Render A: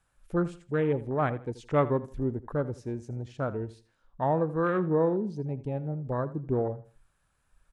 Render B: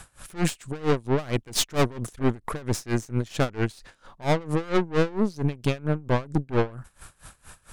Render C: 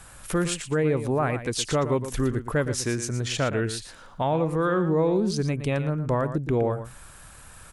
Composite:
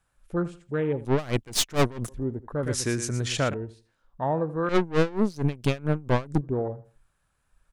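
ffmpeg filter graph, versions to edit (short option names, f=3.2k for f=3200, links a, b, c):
-filter_complex "[1:a]asplit=2[a][b];[0:a]asplit=4[c][d][e][f];[c]atrim=end=1.052[g];[a]atrim=start=1.048:end=2.092[h];[d]atrim=start=2.088:end=2.632[i];[2:a]atrim=start=2.628:end=3.542[j];[e]atrim=start=3.538:end=4.692[k];[b]atrim=start=4.688:end=6.412[l];[f]atrim=start=6.408[m];[g][h]acrossfade=d=0.004:c1=hsin:c2=hsin[n];[n][i]acrossfade=d=0.004:c1=hsin:c2=hsin[o];[o][j]acrossfade=d=0.004:c1=hsin:c2=hsin[p];[p][k]acrossfade=d=0.004:c1=hsin:c2=hsin[q];[q][l]acrossfade=d=0.004:c1=hsin:c2=hsin[r];[r][m]acrossfade=d=0.004:c1=hsin:c2=hsin"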